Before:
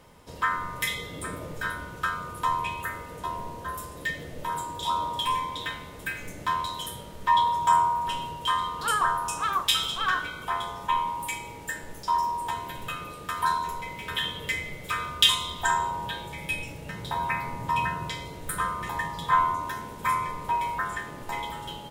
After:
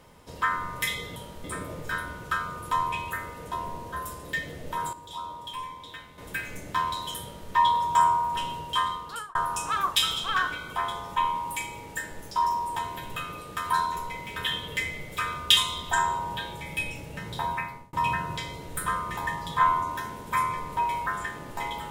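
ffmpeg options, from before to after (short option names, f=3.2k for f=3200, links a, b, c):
-filter_complex "[0:a]asplit=7[a][b][c][d][e][f][g];[a]atrim=end=1.162[h];[b]atrim=start=6.938:end=7.222[i];[c]atrim=start=1.158:end=4.652[j];[d]atrim=start=4.648:end=5.902,asetpts=PTS-STARTPTS,volume=-9.5dB[k];[e]atrim=start=5.898:end=9.07,asetpts=PTS-STARTPTS,afade=t=out:st=2.622:d=0.55[l];[f]atrim=start=9.07:end=17.65,asetpts=PTS-STARTPTS,afade=t=in:d=0.004:c=hsin,afade=t=out:st=8.1:d=0.48[m];[g]atrim=start=17.65,asetpts=PTS-STARTPTS,afade=t=in:d=0.004:c=hsin[n];[h][i]acrossfade=d=0.004:c1=hsin:c2=hsin[o];[o][j]acrossfade=d=0.004:c1=hsin:c2=hsin[p];[p][k]acrossfade=d=0.004:c1=hsin:c2=hsin[q];[l][m][n]concat=n=3:v=0:a=1[r];[q][r]acrossfade=d=0.004:c1=hsin:c2=hsin"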